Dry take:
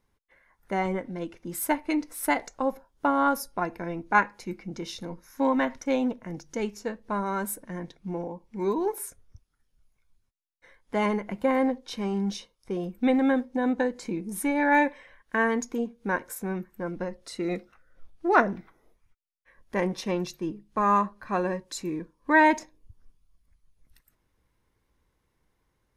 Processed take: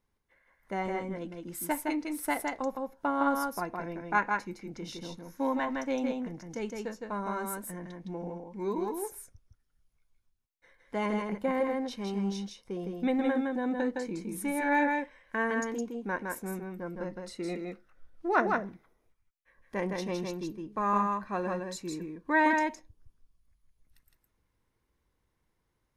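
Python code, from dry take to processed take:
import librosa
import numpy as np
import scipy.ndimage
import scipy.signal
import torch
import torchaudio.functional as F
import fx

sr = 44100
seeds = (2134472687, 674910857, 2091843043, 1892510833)

y = x + 10.0 ** (-3.5 / 20.0) * np.pad(x, (int(162 * sr / 1000.0), 0))[:len(x)]
y = y * 10.0 ** (-6.0 / 20.0)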